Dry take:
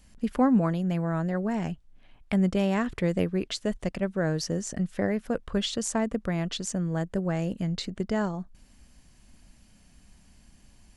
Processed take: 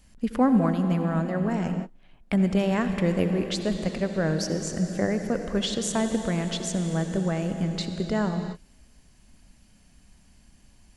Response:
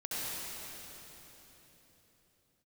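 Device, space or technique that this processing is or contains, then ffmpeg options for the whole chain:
keyed gated reverb: -filter_complex "[0:a]asplit=3[a][b][c];[1:a]atrim=start_sample=2205[d];[b][d]afir=irnorm=-1:irlink=0[e];[c]apad=whole_len=483669[f];[e][f]sidechaingate=range=-33dB:threshold=-45dB:ratio=16:detection=peak,volume=-10dB[g];[a][g]amix=inputs=2:normalize=0"

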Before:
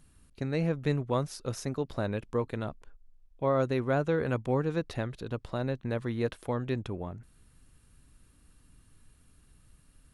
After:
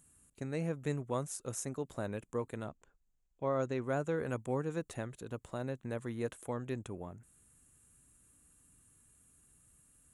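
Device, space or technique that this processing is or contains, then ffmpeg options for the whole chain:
budget condenser microphone: -filter_complex "[0:a]asettb=1/sr,asplit=3[a][b][c];[a]atrim=end=2.674[d];[b]atrim=start=2.67:end=3.84,asetpts=PTS-STARTPTS,afade=t=in:d=0.004:c=qsin,afade=t=out:st=1.166:d=0.004:c=qsin,lowpass=f=7.1k:w=0.5412,lowpass=f=7.1k:w=1.3066[e];[c]atrim=start=3.836[f];[d][e]acrossfade=d=0.004:c1=hsin:c2=qsin[g];[g][f]acrossfade=d=0.004:c1=qsin:c2=hsin,highpass=f=100:p=1,highshelf=f=6k:t=q:w=3:g=7.5,volume=-6dB"

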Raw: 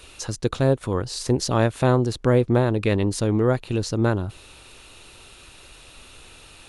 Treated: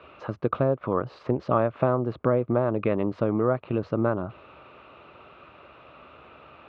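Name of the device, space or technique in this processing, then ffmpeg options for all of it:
bass amplifier: -af "acompressor=threshold=-20dB:ratio=6,highpass=f=79:w=0.5412,highpass=f=79:w=1.3066,equalizer=f=96:t=q:w=4:g=-10,equalizer=f=610:t=q:w=4:g=8,equalizer=f=1.2k:t=q:w=4:g=9,equalizer=f=1.8k:t=q:w=4:g=-6,lowpass=f=2.3k:w=0.5412,lowpass=f=2.3k:w=1.3066"

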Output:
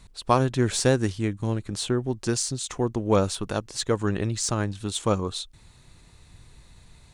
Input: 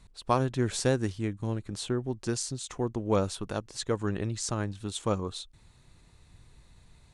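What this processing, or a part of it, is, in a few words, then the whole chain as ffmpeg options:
exciter from parts: -filter_complex "[0:a]asplit=2[a][b];[b]highpass=f=2.5k:p=1,asoftclip=type=tanh:threshold=-35dB,volume=-8dB[c];[a][c]amix=inputs=2:normalize=0,volume=5dB"

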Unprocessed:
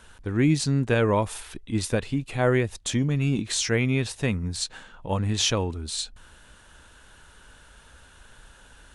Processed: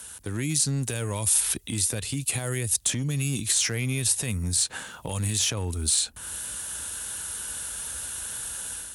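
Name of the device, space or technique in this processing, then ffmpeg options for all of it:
FM broadcast chain: -filter_complex "[0:a]highpass=f=54:w=0.5412,highpass=f=54:w=1.3066,dynaudnorm=f=460:g=3:m=7.5dB,acrossover=split=110|2600|7400[a][b][c][d];[a]acompressor=threshold=-28dB:ratio=4[e];[b]acompressor=threshold=-30dB:ratio=4[f];[c]acompressor=threshold=-41dB:ratio=4[g];[d]acompressor=threshold=-46dB:ratio=4[h];[e][f][g][h]amix=inputs=4:normalize=0,aemphasis=mode=production:type=50fm,alimiter=limit=-20dB:level=0:latency=1:release=62,asoftclip=type=hard:threshold=-21.5dB,lowpass=f=15k:w=0.5412,lowpass=f=15k:w=1.3066,aemphasis=mode=production:type=50fm"

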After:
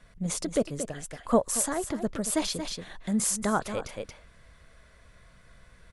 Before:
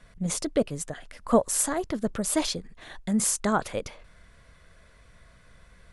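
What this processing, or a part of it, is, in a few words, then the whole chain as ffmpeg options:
ducked delay: -filter_complex "[0:a]asplit=3[a][b][c];[b]adelay=229,volume=-4dB[d];[c]apad=whole_len=271424[e];[d][e]sidechaincompress=threshold=-35dB:ratio=5:attack=7.8:release=168[f];[a][f]amix=inputs=2:normalize=0,volume=-2dB"

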